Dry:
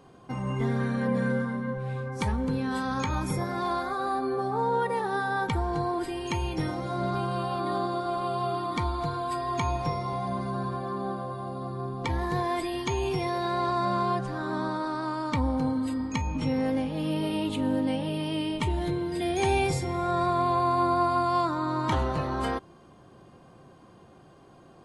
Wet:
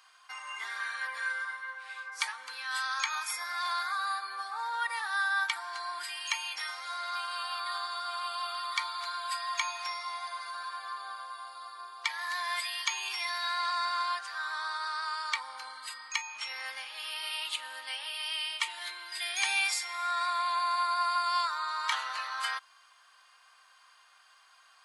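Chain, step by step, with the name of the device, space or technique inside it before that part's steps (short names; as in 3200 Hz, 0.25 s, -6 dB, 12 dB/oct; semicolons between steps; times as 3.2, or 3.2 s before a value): headphones lying on a table (HPF 1300 Hz 24 dB/oct; bell 4700 Hz +5 dB 0.21 oct); gain +5 dB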